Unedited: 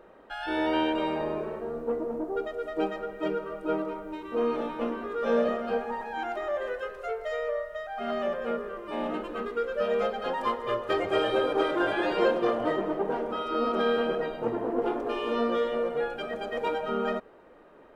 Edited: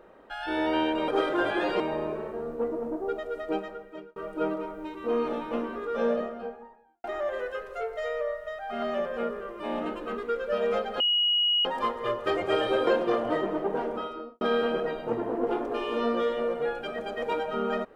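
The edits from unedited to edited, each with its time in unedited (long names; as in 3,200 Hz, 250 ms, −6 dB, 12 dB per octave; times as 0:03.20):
0:02.70–0:03.44: fade out
0:05.02–0:06.32: fade out and dull
0:10.28: insert tone 2,900 Hz −21 dBFS 0.65 s
0:11.50–0:12.22: move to 0:01.08
0:13.26–0:13.76: fade out and dull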